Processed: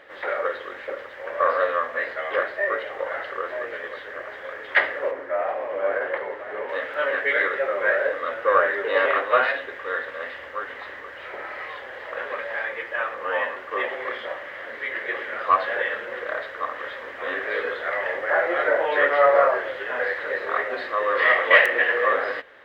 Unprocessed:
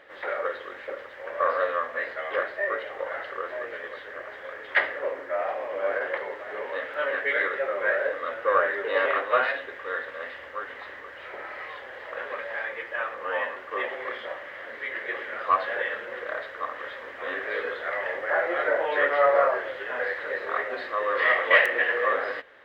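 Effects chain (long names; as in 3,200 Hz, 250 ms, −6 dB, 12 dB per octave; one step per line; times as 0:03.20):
0:05.11–0:06.69: high-shelf EQ 3,800 Hz −11.5 dB
level +3.5 dB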